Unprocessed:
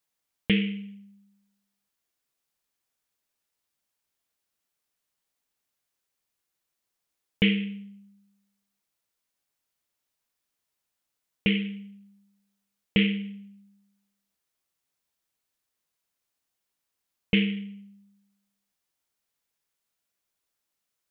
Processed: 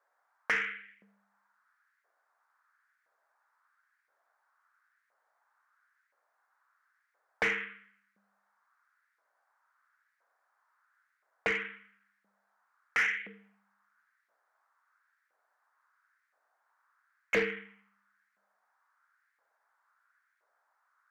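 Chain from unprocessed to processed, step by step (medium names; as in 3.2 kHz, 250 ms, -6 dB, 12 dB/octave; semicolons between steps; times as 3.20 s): resonant high shelf 2.1 kHz -11 dB, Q 3; LFO high-pass saw up 0.98 Hz 520–2100 Hz; overdrive pedal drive 18 dB, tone 2.1 kHz, clips at -17.5 dBFS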